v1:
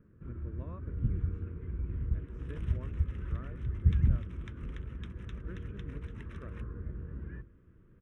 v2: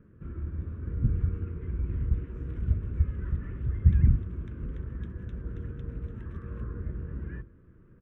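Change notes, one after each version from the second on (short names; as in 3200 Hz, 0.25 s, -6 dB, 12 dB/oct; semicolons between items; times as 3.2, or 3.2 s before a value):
speech: add differentiator; first sound +5.0 dB; second sound -9.5 dB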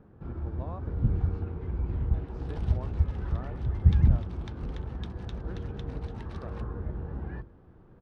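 speech: remove differentiator; second sound +8.5 dB; master: remove fixed phaser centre 1900 Hz, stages 4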